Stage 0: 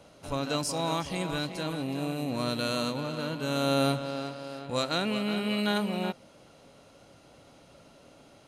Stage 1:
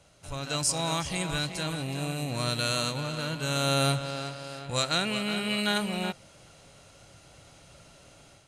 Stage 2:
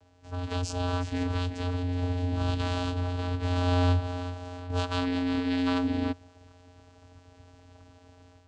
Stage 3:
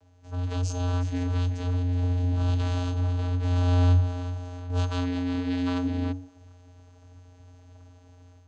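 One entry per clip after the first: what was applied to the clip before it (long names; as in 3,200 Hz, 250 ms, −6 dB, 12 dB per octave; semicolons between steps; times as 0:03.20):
octave-band graphic EQ 250/500/1,000/8,000 Hz −12/−7/−6/+11 dB; automatic gain control gain up to 7 dB; high-shelf EQ 3,100 Hz −9.5 dB; level +1 dB
channel vocoder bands 8, square 89.3 Hz; level +2.5 dB
tuned comb filter 92 Hz, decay 0.53 s, harmonics odd, mix 80%; level +9 dB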